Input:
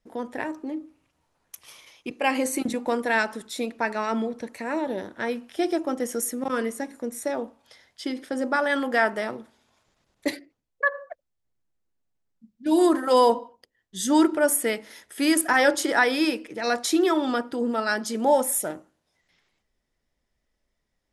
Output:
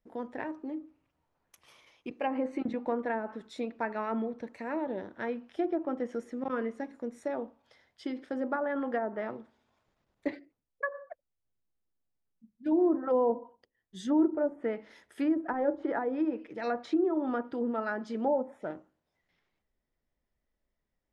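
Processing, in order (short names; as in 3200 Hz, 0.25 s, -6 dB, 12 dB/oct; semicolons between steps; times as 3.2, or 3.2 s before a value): treble ducked by the level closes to 630 Hz, closed at -17.5 dBFS; LPF 1900 Hz 6 dB/oct; gain -5.5 dB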